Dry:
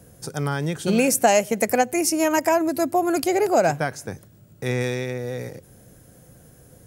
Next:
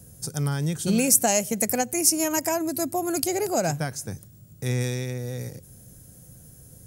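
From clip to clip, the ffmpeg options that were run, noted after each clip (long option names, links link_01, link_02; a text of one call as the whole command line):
ffmpeg -i in.wav -af "bass=frequency=250:gain=10,treble=frequency=4000:gain=13,volume=-7.5dB" out.wav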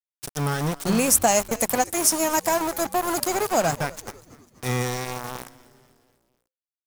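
ffmpeg -i in.wav -filter_complex "[0:a]aeval=exprs='val(0)*gte(abs(val(0)),0.0501)':channel_layout=same,adynamicequalizer=threshold=0.00794:dfrequency=1000:dqfactor=1:tfrequency=1000:tqfactor=1:attack=5:release=100:ratio=0.375:range=3.5:mode=boostabove:tftype=bell,asplit=5[link_01][link_02][link_03][link_04][link_05];[link_02]adelay=247,afreqshift=-130,volume=-20.5dB[link_06];[link_03]adelay=494,afreqshift=-260,volume=-25.7dB[link_07];[link_04]adelay=741,afreqshift=-390,volume=-30.9dB[link_08];[link_05]adelay=988,afreqshift=-520,volume=-36.1dB[link_09];[link_01][link_06][link_07][link_08][link_09]amix=inputs=5:normalize=0" out.wav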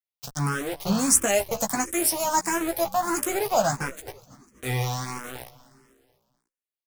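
ffmpeg -i in.wav -filter_complex "[0:a]asplit=2[link_01][link_02];[link_02]adelay=15,volume=-6dB[link_03];[link_01][link_03]amix=inputs=2:normalize=0,asplit=2[link_04][link_05];[link_05]afreqshift=1.5[link_06];[link_04][link_06]amix=inputs=2:normalize=1" out.wav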